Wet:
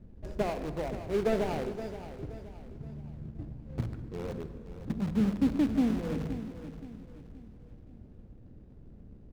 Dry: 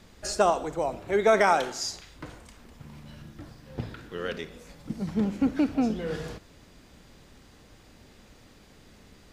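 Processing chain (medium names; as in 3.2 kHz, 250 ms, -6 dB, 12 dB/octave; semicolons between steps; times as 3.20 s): median filter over 41 samples; bass shelf 350 Hz +12 dB; in parallel at -9 dB: integer overflow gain 23 dB; on the sum: treble shelf 7.4 kHz -9 dB; feedback delay 523 ms, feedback 38%, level -12 dB; on a send at -12.5 dB: reverberation RT60 1.9 s, pre-delay 42 ms; on the sum: trim -9 dB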